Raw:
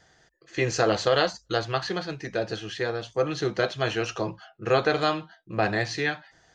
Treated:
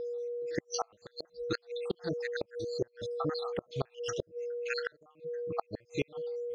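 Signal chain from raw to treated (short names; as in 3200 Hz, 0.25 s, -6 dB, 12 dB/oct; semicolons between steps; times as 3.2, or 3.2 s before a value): random spectral dropouts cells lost 74%; whine 480 Hz -34 dBFS; flipped gate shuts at -20 dBFS, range -35 dB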